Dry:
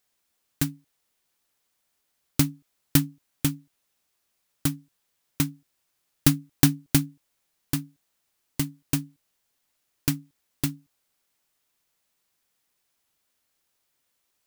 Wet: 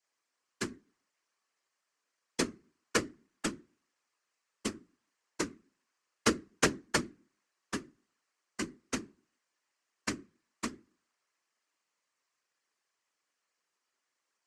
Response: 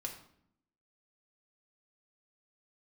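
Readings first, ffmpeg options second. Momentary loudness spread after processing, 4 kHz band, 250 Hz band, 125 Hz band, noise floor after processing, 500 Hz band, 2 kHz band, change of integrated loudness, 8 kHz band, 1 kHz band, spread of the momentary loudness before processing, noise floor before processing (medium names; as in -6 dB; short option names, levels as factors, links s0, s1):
16 LU, -5.5 dB, -10.5 dB, -19.5 dB, -85 dBFS, +5.0 dB, +1.0 dB, -8.5 dB, -7.0 dB, +2.5 dB, 13 LU, -76 dBFS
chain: -filter_complex "[0:a]asplit=2[s0][s1];[1:a]atrim=start_sample=2205,asetrate=74970,aresample=44100[s2];[s1][s2]afir=irnorm=-1:irlink=0,volume=0.335[s3];[s0][s3]amix=inputs=2:normalize=0,aeval=exprs='0.944*(cos(1*acos(clip(val(0)/0.944,-1,1)))-cos(1*PI/2))+0.335*(cos(4*acos(clip(val(0)/0.944,-1,1)))-cos(4*PI/2))+0.0075*(cos(5*acos(clip(val(0)/0.944,-1,1)))-cos(5*PI/2))':c=same,highpass=f=210:w=0.5412,highpass=f=210:w=1.3066,equalizer=f=230:t=q:w=4:g=-9,equalizer=f=810:t=q:w=4:g=-3,equalizer=f=1100:t=q:w=4:g=6,equalizer=f=1800:t=q:w=4:g=4,equalizer=f=3600:t=q:w=4:g=-7,lowpass=f=7700:w=0.5412,lowpass=f=7700:w=1.3066,afftfilt=real='hypot(re,im)*cos(2*PI*random(0))':imag='hypot(re,im)*sin(2*PI*random(1))':win_size=512:overlap=0.75,adynamicequalizer=threshold=0.00398:dfrequency=1300:dqfactor=0.84:tfrequency=1300:tqfactor=0.84:attack=5:release=100:ratio=0.375:range=2.5:mode=boostabove:tftype=bell"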